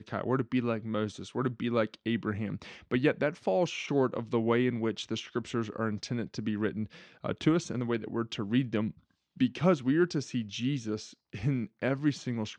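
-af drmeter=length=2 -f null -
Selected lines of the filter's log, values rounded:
Channel 1: DR: 14.2
Overall DR: 14.2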